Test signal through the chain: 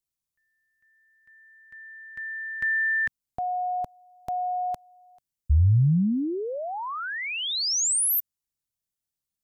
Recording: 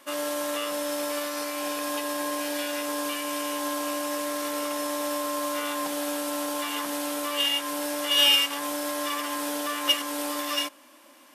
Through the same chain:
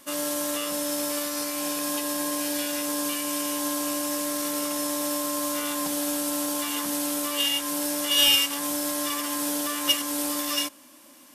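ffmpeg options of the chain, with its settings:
-af "bass=f=250:g=15,treble=f=4000:g=9,volume=0.75"

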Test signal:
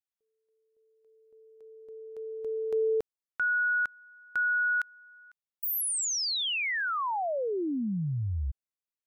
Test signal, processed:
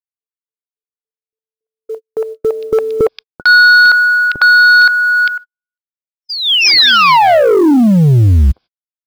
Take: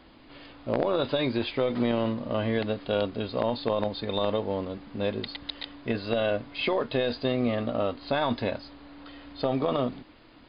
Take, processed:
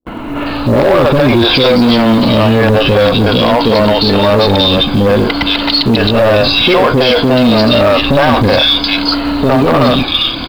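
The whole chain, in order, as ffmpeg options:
-filter_complex "[0:a]afftfilt=real='re*pow(10,7/40*sin(2*PI*(1.9*log(max(b,1)*sr/1024/100)/log(2)-(-0.56)*(pts-256)/sr)))':imag='im*pow(10,7/40*sin(2*PI*(1.9*log(max(b,1)*sr/1024/100)/log(2)-(-0.56)*(pts-256)/sr)))':win_size=1024:overlap=0.75,lowpass=f=3600:p=1,bandreject=f=1900:w=5.8,acrossover=split=460|2400[s0][s1][s2];[s1]adelay=60[s3];[s2]adelay=460[s4];[s0][s3][s4]amix=inputs=3:normalize=0,acompressor=threshold=0.0141:ratio=3:attack=1.5:release=26:knee=1:detection=peak,aresample=11025,asoftclip=type=tanh:threshold=0.015,aresample=44100,crystalizer=i=2.5:c=0,acrusher=bits=8:mode=log:mix=0:aa=0.000001,agate=range=0.00158:threshold=0.002:ratio=16:release=178:detection=rms,alimiter=level_in=44.7:limit=0.891:release=50:level=0:latency=1,volume=0.891"

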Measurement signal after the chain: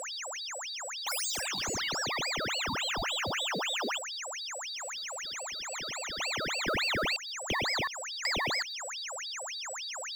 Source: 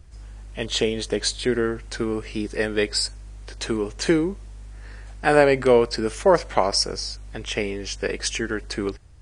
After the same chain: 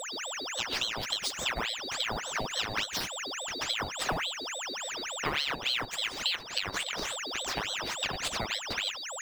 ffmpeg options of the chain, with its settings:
-filter_complex "[0:a]acrossover=split=240|4700[s0][s1][s2];[s2]acrusher=samples=14:mix=1:aa=0.000001:lfo=1:lforange=22.4:lforate=0.62[s3];[s0][s1][s3]amix=inputs=3:normalize=0,aeval=exprs='val(0)+0.0224*sin(2*PI*4200*n/s)':c=same,acompressor=threshold=0.0501:ratio=6,acrusher=bits=6:mode=log:mix=0:aa=0.000001,aeval=exprs='val(0)*sin(2*PI*2000*n/s+2000*0.85/3.5*sin(2*PI*3.5*n/s))':c=same"

